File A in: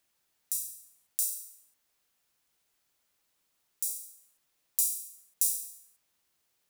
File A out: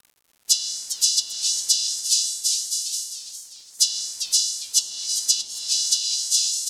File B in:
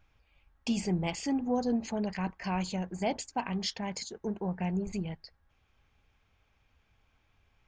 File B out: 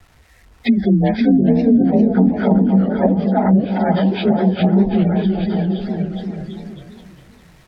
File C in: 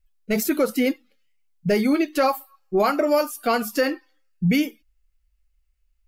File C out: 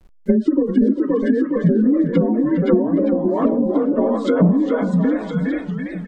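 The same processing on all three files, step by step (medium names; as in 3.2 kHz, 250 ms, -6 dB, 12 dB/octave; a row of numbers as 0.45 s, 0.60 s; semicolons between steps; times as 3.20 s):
frequency axis rescaled in octaves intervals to 89%; in parallel at 0 dB: peak limiter -18 dBFS; on the sum: treble shelf 7.1 kHz -7 dB; spectral gate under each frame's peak -25 dB strong; compression 10:1, threshold -22 dBFS; bit crusher 11-bit; band-stop 1.2 kHz, Q 21; on a send: bouncing-ball echo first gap 520 ms, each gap 0.8×, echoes 5; on the sum: low-pass that closes with the level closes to 330 Hz, closed at -21 dBFS; modulated delay 403 ms, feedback 36%, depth 187 cents, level -10 dB; peak normalisation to -2 dBFS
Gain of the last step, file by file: +20.0 dB, +13.0 dB, +11.0 dB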